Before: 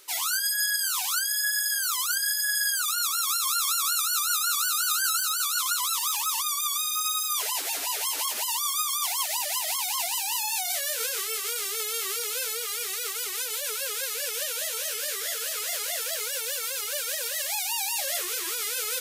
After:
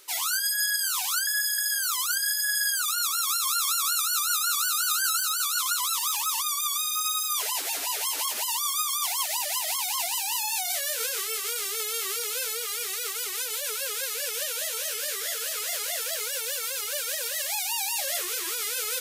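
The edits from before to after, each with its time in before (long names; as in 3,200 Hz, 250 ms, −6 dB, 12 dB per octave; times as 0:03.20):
0:01.27–0:01.58: reverse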